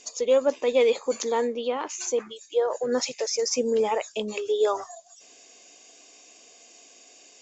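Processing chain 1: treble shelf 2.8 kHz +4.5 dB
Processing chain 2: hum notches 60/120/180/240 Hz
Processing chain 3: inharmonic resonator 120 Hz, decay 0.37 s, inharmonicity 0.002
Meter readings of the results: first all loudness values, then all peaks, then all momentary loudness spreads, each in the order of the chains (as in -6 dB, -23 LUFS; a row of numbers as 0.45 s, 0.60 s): -25.0 LUFS, -25.5 LUFS, -36.5 LUFS; -10.0 dBFS, -11.0 dBFS, -19.5 dBFS; 8 LU, 8 LU, 9 LU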